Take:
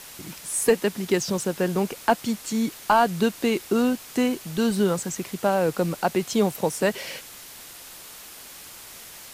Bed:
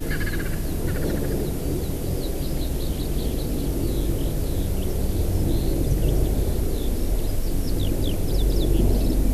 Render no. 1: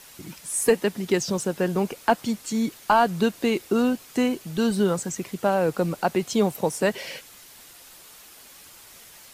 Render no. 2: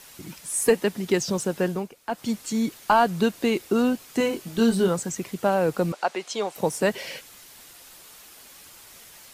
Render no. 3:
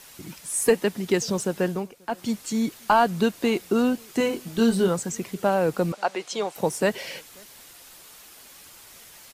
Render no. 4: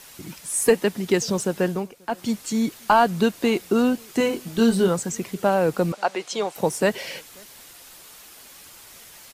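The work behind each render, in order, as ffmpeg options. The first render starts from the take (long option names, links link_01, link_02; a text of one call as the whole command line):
ffmpeg -i in.wav -af "afftdn=noise_reduction=6:noise_floor=-43" out.wav
ffmpeg -i in.wav -filter_complex "[0:a]asettb=1/sr,asplit=3[link_01][link_02][link_03];[link_01]atrim=end=4.184[link_04];[link_02]atrim=start=4.18:end=4.88,asetpts=PTS-STARTPTS,afade=type=in:duration=0.004:curve=qsin,afade=type=out:start_time=0.696:duration=0.004:curve=qsin,asplit=2[link_05][link_06];[link_06]adelay=22,volume=-5dB[link_07];[link_05][link_07]amix=inputs=2:normalize=0,atrim=end_sample=30870[link_08];[link_03]atrim=start=4.876[link_09];[link_04][link_08]acrossfade=duration=0.004:curve1=hsin:curve2=qsin[link_10];[link_10][link_09]acrossfade=duration=0.004:curve1=qsin:curve2=hsin,asettb=1/sr,asplit=3[link_11][link_12][link_13];[link_11]atrim=end=5.924[link_14];[link_12]atrim=start=5.92:end=6.56,asetpts=PTS-STARTPTS,afade=type=in:duration=0.004:curve=qsin,afade=type=out:start_time=0.636:duration=0.004:curve=qsin,highpass=530,lowpass=7000[link_15];[link_13]atrim=start=6.556[link_16];[link_14][link_15]acrossfade=duration=0.004:curve1=hsin:curve2=qsin[link_17];[link_17][link_16]acrossfade=duration=0.004:curve1=qsin:curve2=hsin,asplit=3[link_18][link_19][link_20];[link_18]atrim=end=1.89,asetpts=PTS-STARTPTS,afade=type=out:start_time=1.65:duration=0.24:silence=0.223872[link_21];[link_19]atrim=start=1.89:end=2.07,asetpts=PTS-STARTPTS,volume=-13dB[link_22];[link_20]atrim=start=2.07,asetpts=PTS-STARTPTS,afade=type=in:duration=0.24:silence=0.223872[link_23];[link_21][link_22][link_23]concat=n=3:v=0:a=1" out.wav
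ffmpeg -i in.wav -filter_complex "[0:a]asplit=2[link_01][link_02];[link_02]adelay=536.4,volume=-29dB,highshelf=frequency=4000:gain=-12.1[link_03];[link_01][link_03]amix=inputs=2:normalize=0" out.wav
ffmpeg -i in.wav -af "volume=2dB" out.wav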